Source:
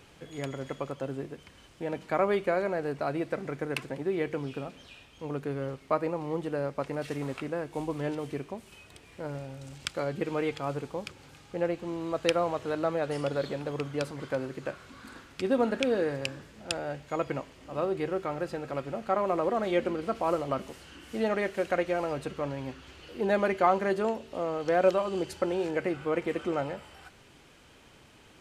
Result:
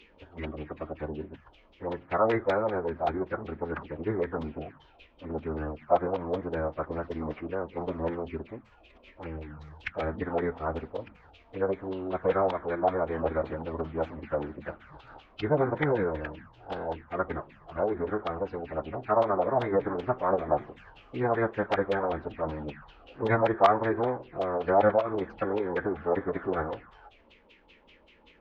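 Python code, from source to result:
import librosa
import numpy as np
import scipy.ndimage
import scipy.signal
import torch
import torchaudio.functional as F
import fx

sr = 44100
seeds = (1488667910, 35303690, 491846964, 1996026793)

y = fx.env_phaser(x, sr, low_hz=180.0, high_hz=4900.0, full_db=-28.0)
y = fx.filter_lfo_lowpass(y, sr, shape='saw_down', hz=5.2, low_hz=820.0, high_hz=3400.0, q=5.0)
y = fx.pitch_keep_formants(y, sr, semitones=-10.0)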